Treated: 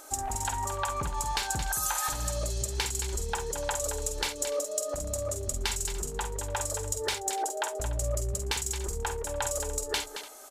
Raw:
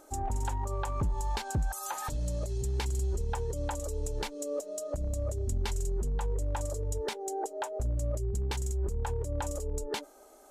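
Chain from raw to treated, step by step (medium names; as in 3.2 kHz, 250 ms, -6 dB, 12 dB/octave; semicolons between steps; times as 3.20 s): tilt shelf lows -8.5 dB, about 740 Hz; compression 2:1, threshold -34 dBFS, peak gain reduction 4.5 dB; multi-tap echo 50/67/222/293 ms -8/-19.5/-9.5/-18 dB; trim +4.5 dB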